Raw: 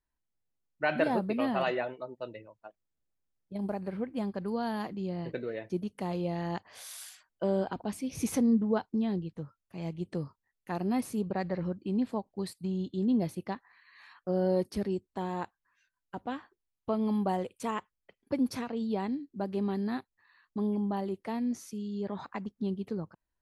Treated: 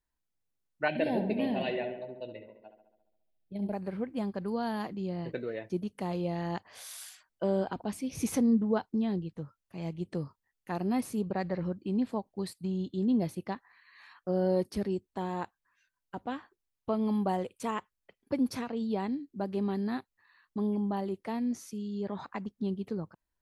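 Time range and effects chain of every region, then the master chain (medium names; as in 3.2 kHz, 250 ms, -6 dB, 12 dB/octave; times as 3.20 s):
0.88–3.73 s: static phaser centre 3 kHz, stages 4 + filtered feedback delay 69 ms, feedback 64%, low-pass 3.1 kHz, level -8.5 dB
whole clip: none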